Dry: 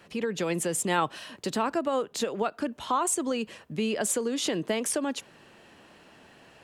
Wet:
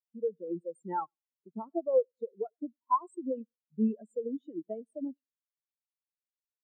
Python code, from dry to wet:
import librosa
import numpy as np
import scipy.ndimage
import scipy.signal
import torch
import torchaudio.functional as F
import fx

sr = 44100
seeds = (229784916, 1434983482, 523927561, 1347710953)

p1 = x + fx.echo_feedback(x, sr, ms=99, feedback_pct=53, wet_db=-14.5, dry=0)
p2 = fx.spectral_expand(p1, sr, expansion=4.0)
y = F.gain(torch.from_numpy(p2), -3.5).numpy()